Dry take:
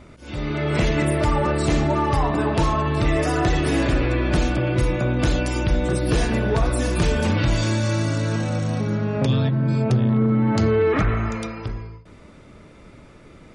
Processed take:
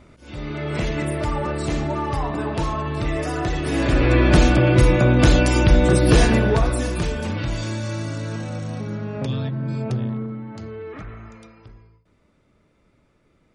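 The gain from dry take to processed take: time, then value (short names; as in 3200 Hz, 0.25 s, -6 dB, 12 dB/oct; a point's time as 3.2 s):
3.62 s -4 dB
4.16 s +6 dB
6.24 s +6 dB
7.17 s -5.5 dB
10.03 s -5.5 dB
10.49 s -16 dB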